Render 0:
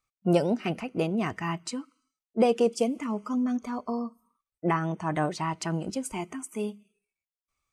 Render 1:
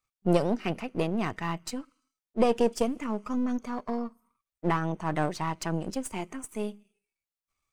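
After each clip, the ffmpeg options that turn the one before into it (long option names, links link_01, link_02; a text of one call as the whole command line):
ffmpeg -i in.wav -af "aeval=exprs='if(lt(val(0),0),0.447*val(0),val(0))':channel_layout=same,volume=1dB" out.wav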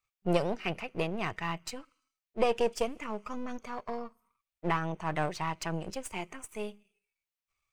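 ffmpeg -i in.wav -af "equalizer=frequency=250:width_type=o:width=0.67:gain=-10,equalizer=frequency=2500:width_type=o:width=0.67:gain=5,equalizer=frequency=10000:width_type=o:width=0.67:gain=-3,volume=-2dB" out.wav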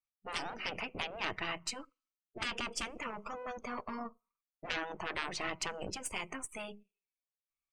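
ffmpeg -i in.wav -af "aeval=exprs='0.224*(cos(1*acos(clip(val(0)/0.224,-1,1)))-cos(1*PI/2))+0.0501*(cos(4*acos(clip(val(0)/0.224,-1,1)))-cos(4*PI/2))':channel_layout=same,afftdn=noise_reduction=20:noise_floor=-56,afftfilt=real='re*lt(hypot(re,im),0.0562)':imag='im*lt(hypot(re,im),0.0562)':win_size=1024:overlap=0.75,volume=4dB" out.wav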